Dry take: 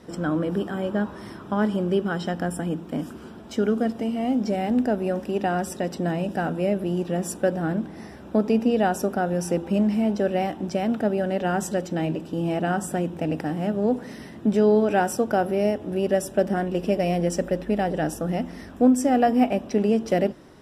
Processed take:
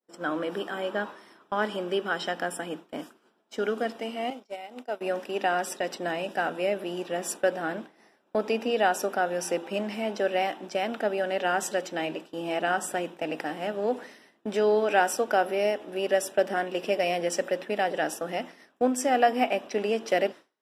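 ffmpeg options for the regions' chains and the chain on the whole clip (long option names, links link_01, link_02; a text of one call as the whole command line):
ffmpeg -i in.wav -filter_complex "[0:a]asettb=1/sr,asplit=3[link_01][link_02][link_03];[link_01]atrim=end=4.304[link_04];[link_02]atrim=start=4.3:end=5.01,asetpts=PTS-STARTPTS,afade=type=in:duration=0.004:curve=qsin,afade=type=out:start_time=0.706:duration=0.004:curve=qsin,agate=range=-33dB:threshold=-20dB:ratio=3:release=100:detection=peak,highpass=frequency=640:poles=1,bandreject=frequency=1700:width=5.4[link_05];[link_03]atrim=start=5.006[link_06];[link_04][link_05]acrossfade=duration=0.004:curve1=hsin:curve2=qsin[link_07];[link_07][link_06]acrossfade=duration=0.004:curve1=qsin:curve2=hsin,adynamicequalizer=threshold=0.00891:dfrequency=2600:dqfactor=0.7:tfrequency=2600:tqfactor=0.7:attack=5:release=100:ratio=0.375:range=3:mode=boostabove:tftype=bell,highpass=430,agate=range=-33dB:threshold=-33dB:ratio=3:detection=peak,volume=-1dB" out.wav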